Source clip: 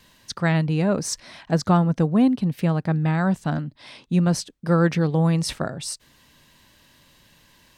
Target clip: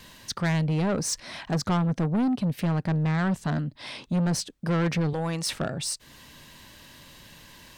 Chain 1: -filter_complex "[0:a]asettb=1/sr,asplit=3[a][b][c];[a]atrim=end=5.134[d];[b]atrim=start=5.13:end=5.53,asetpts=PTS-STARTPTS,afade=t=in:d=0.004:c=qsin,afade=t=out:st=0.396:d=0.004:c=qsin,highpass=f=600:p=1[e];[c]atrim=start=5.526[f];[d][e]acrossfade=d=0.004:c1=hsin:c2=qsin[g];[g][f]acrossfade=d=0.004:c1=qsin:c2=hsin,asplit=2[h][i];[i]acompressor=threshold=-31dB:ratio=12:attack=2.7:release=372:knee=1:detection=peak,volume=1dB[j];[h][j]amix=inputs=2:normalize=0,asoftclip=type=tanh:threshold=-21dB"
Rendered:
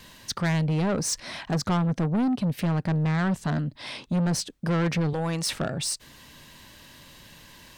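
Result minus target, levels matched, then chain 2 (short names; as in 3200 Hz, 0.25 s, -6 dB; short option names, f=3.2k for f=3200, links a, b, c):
compressor: peak gain reduction -8 dB
-filter_complex "[0:a]asettb=1/sr,asplit=3[a][b][c];[a]atrim=end=5.134[d];[b]atrim=start=5.13:end=5.53,asetpts=PTS-STARTPTS,afade=t=in:d=0.004:c=qsin,afade=t=out:st=0.396:d=0.004:c=qsin,highpass=f=600:p=1[e];[c]atrim=start=5.526[f];[d][e]acrossfade=d=0.004:c1=hsin:c2=qsin[g];[g][f]acrossfade=d=0.004:c1=qsin:c2=hsin,asplit=2[h][i];[i]acompressor=threshold=-40dB:ratio=12:attack=2.7:release=372:knee=1:detection=peak,volume=1dB[j];[h][j]amix=inputs=2:normalize=0,asoftclip=type=tanh:threshold=-21dB"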